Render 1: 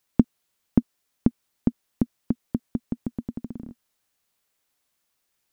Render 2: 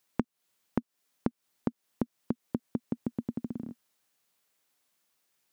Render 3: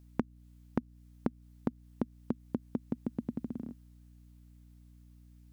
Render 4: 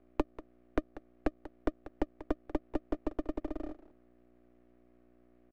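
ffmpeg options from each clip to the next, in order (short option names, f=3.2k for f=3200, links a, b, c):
-af "highpass=120,acompressor=threshold=-26dB:ratio=12"
-af "aeval=exprs='val(0)+0.00224*(sin(2*PI*60*n/s)+sin(2*PI*2*60*n/s)/2+sin(2*PI*3*60*n/s)/3+sin(2*PI*4*60*n/s)/4+sin(2*PI*5*60*n/s)/5)':c=same,volume=-2dB"
-filter_complex "[0:a]asplit=2[a][b];[b]adelay=190,highpass=300,lowpass=3.4k,asoftclip=type=hard:threshold=-22dB,volume=-12dB[c];[a][c]amix=inputs=2:normalize=0,highpass=f=190:t=q:w=0.5412,highpass=f=190:t=q:w=1.307,lowpass=f=2.2k:t=q:w=0.5176,lowpass=f=2.2k:t=q:w=0.7071,lowpass=f=2.2k:t=q:w=1.932,afreqshift=68,aeval=exprs='max(val(0),0)':c=same,volume=6dB"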